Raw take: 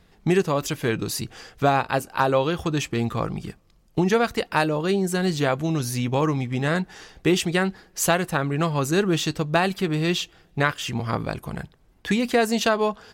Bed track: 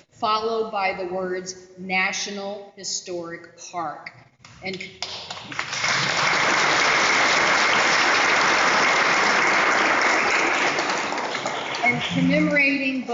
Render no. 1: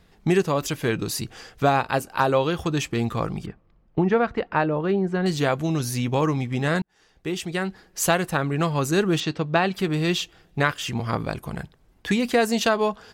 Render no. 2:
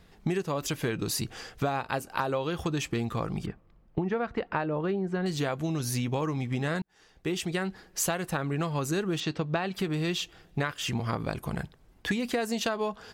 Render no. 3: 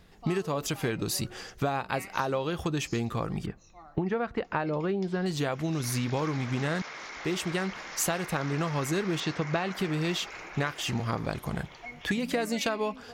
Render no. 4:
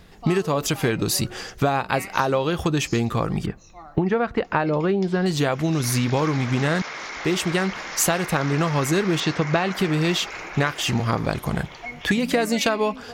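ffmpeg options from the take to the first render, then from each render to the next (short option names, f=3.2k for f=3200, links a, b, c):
-filter_complex "[0:a]asettb=1/sr,asplit=3[a][b][c];[a]atrim=end=3.464[d];[b]atrim=start=3.46:end=5.26,asetpts=PTS-STARTPTS,afade=t=in:d=0.004:c=qsin,afade=t=out:st=1.796:d=0.004:c=qsin,lowpass=1.9k[e];[c]atrim=start=5.256[f];[d][e]acrossfade=d=0.004:c1=hsin:c2=qsin[g];[g][f]acrossfade=d=0.004:c1=qsin:c2=hsin,asettb=1/sr,asplit=3[h][i][j];[h]atrim=end=9.204[k];[i]atrim=start=9.2:end=9.74,asetpts=PTS-STARTPTS,afade=t=in:d=0.004:c=qsin,afade=t=out:st=0.536:d=0.004:c=qsin,highpass=110,lowpass=4.1k[l];[j]atrim=start=9.736[m];[k][l]acrossfade=d=0.004:c1=hsin:c2=qsin[n];[n][m]acrossfade=d=0.004:c1=qsin:c2=hsin,asplit=2[o][p];[o]atrim=end=6.82,asetpts=PTS-STARTPTS,afade=t=out:st=6.816:d=0.004:c=hsin[q];[p]atrim=start=6.82,asetpts=PTS-STARTPTS,afade=t=in:d=1.3[r];[q][r]concat=n=2:v=0:a=1"
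-af "acompressor=threshold=-26dB:ratio=6"
-filter_complex "[1:a]volume=-23dB[a];[0:a][a]amix=inputs=2:normalize=0"
-af "volume=8dB"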